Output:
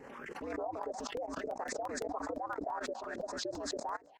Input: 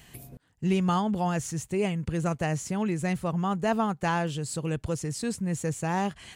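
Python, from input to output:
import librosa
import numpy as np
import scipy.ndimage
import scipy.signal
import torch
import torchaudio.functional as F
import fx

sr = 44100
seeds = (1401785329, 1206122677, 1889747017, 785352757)

y = fx.peak_eq(x, sr, hz=560.0, db=12.0, octaves=0.79)
y = fx.hum_notches(y, sr, base_hz=60, count=4)
y = y * np.sin(2.0 * np.pi * 110.0 * np.arange(len(y)) / sr)
y = fx.echo_wet_highpass(y, sr, ms=400, feedback_pct=45, hz=2800.0, wet_db=-6.0)
y = np.repeat(y[::3], 3)[:len(y)]
y = fx.peak_eq(y, sr, hz=5100.0, db=5.0, octaves=1.4)
y = fx.env_phaser(y, sr, low_hz=570.0, high_hz=3000.0, full_db=-26.0)
y = fx.filter_lfo_bandpass(y, sr, shape='saw_up', hz=2.3, low_hz=410.0, high_hz=2100.0, q=6.9)
y = fx.stretch_vocoder(y, sr, factor=0.66)
y = fx.level_steps(y, sr, step_db=23)
y = fx.buffer_crackle(y, sr, first_s=0.83, period_s=0.17, block=64, kind='repeat')
y = fx.pre_swell(y, sr, db_per_s=26.0)
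y = y * librosa.db_to_amplitude(8.5)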